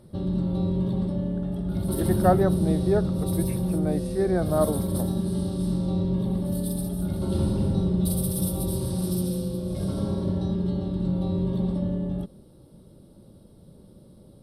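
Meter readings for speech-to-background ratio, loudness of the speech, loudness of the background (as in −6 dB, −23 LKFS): 0.0 dB, −27.0 LKFS, −27.0 LKFS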